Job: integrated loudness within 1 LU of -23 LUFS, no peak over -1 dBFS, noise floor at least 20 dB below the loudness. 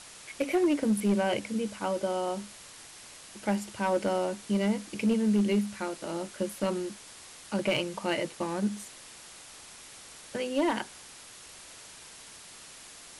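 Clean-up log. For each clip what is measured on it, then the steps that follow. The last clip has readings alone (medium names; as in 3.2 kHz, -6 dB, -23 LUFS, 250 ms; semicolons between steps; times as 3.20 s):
clipped samples 0.6%; clipping level -19.5 dBFS; noise floor -49 dBFS; noise floor target -50 dBFS; loudness -30.0 LUFS; peak level -19.5 dBFS; loudness target -23.0 LUFS
-> clip repair -19.5 dBFS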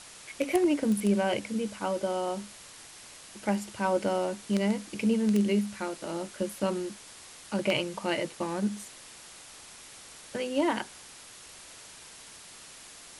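clipped samples 0.0%; noise floor -49 dBFS; noise floor target -50 dBFS
-> noise reduction 6 dB, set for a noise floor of -49 dBFS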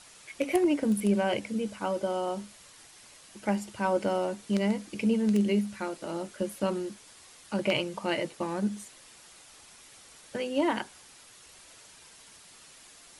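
noise floor -54 dBFS; loudness -30.0 LUFS; peak level -10.5 dBFS; loudness target -23.0 LUFS
-> trim +7 dB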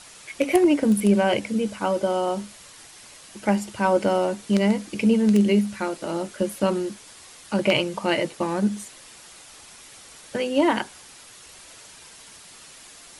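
loudness -23.0 LUFS; peak level -3.5 dBFS; noise floor -47 dBFS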